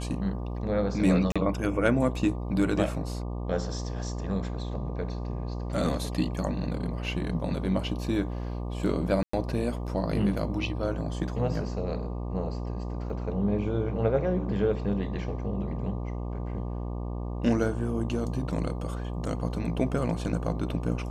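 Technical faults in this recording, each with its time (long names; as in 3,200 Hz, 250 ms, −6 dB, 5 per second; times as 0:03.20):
mains buzz 60 Hz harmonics 20 −33 dBFS
0:01.32–0:01.36: drop-out 36 ms
0:09.23–0:09.33: drop-out 104 ms
0:13.10: drop-out 3 ms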